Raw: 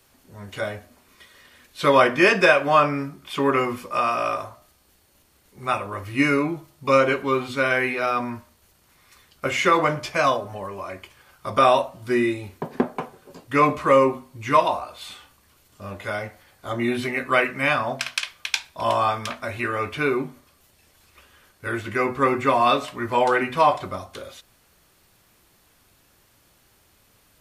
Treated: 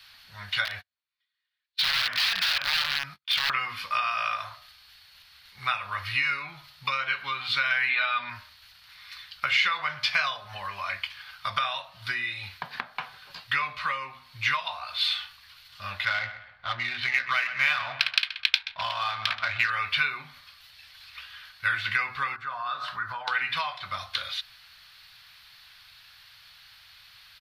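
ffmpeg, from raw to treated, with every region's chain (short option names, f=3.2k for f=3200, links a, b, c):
-filter_complex "[0:a]asettb=1/sr,asplit=3[a][b][c];[a]atrim=end=0.654[d];[b]atrim=start=0.65:end=3.5,asetpts=PTS-STARTPTS,afade=t=in:d=0.004:c=qsin,afade=t=out:st=2.846:d=0.004:c=qsin,agate=range=-43dB:threshold=-42dB:ratio=16:release=100:detection=peak,acompressor=threshold=-31dB:ratio=4:attack=3.2:release=140:knee=1:detection=peak,aeval=exprs='(mod(23.7*val(0)+1,2)-1)/23.7':c=same[e];[c]atrim=start=3.496[f];[d][e]acrossfade=d=0.004:c1=hsin:c2=qsin[g];[g][f]acrossfade=d=0.004:c1=qsin:c2=hsin,asettb=1/sr,asplit=3[h][i][j];[h]atrim=end=7.894[k];[i]atrim=start=7.89:end=8.3,asetpts=PTS-STARTPTS,afade=t=in:d=0.004:c=qsin,afade=t=out:st=0.406:d=0.004:c=qsin,acrossover=split=3400[l][m];[m]acompressor=threshold=-49dB:ratio=4:attack=1:release=60[n];[l][n]amix=inputs=2:normalize=0,highshelf=f=5.2k:t=q:w=3:g=-11.5,aecho=1:1:3.4:0.53,atrim=end_sample=18081[o];[j]atrim=start=8.296[p];[k][o]acrossfade=d=0.004:c1=hsin:c2=qsin[q];[q][p]acrossfade=d=0.004:c1=qsin:c2=hsin,asettb=1/sr,asplit=3[r][s][t];[r]atrim=end=16.054[u];[s]atrim=start=16.05:end=19.7,asetpts=PTS-STARTPTS,afade=t=in:d=0.004:c=qsin,afade=t=out:st=3.646:d=0.004:c=qsin,adynamicsmooth=sensitivity=5.5:basefreq=1.2k,asplit=2[v][w];[w]adelay=128,lowpass=f=3.3k:p=1,volume=-15dB,asplit=2[x][y];[y]adelay=128,lowpass=f=3.3k:p=1,volume=0.36,asplit=2[z][aa];[aa]adelay=128,lowpass=f=3.3k:p=1,volume=0.36[ab];[v][x][z][ab]amix=inputs=4:normalize=0,atrim=end_sample=160965[ac];[t]atrim=start=19.696[ad];[u][ac]acrossfade=d=0.004:c1=hsin:c2=qsin[ae];[ae][ad]acrossfade=d=0.004:c1=qsin:c2=hsin,asettb=1/sr,asplit=3[af][ag][ah];[af]atrim=end=22.364[ai];[ag]atrim=start=22.36:end=23.28,asetpts=PTS-STARTPTS,afade=t=in:d=0.004:c=qsin,afade=t=out:st=0.916:d=0.004:c=qsin,acompressor=threshold=-33dB:ratio=6:attack=3.2:release=140:knee=1:detection=peak,highshelf=f=1.8k:t=q:w=3:g=-7[aj];[ah]atrim=start=23.276[ak];[ai][aj]acrossfade=d=0.004:c1=hsin:c2=qsin[al];[al][ak]acrossfade=d=0.004:c1=qsin:c2=hsin,highshelf=f=5.6k:t=q:w=3:g=-10,acompressor=threshold=-28dB:ratio=10,firequalizer=gain_entry='entry(120,0);entry(310,-21);entry(720,1);entry(1500,14)':delay=0.05:min_phase=1,volume=-5dB"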